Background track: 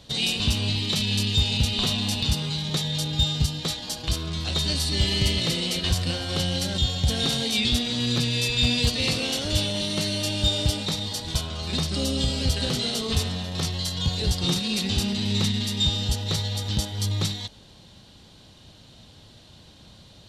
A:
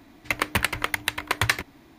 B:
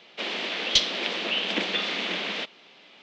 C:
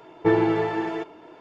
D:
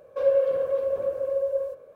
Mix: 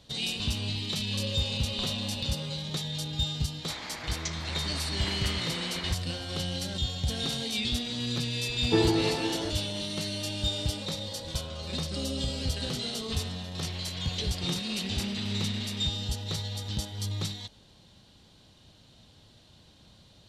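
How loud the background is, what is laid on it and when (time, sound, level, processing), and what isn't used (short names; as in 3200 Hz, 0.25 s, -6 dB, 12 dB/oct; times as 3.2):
background track -7 dB
0.97 add D -11 dB + band-pass 1200 Hz, Q 1.7
3.5 add B -15 dB + EQ curve 540 Hz 0 dB, 900 Hz +11 dB, 2200 Hz +7 dB, 3100 Hz -12 dB, 7100 Hz +13 dB
8.47 add C -8 dB + low shelf 220 Hz +11 dB
10.66 add D -6 dB + compressor, threshold -39 dBFS
13.43 add B -16 dB
not used: A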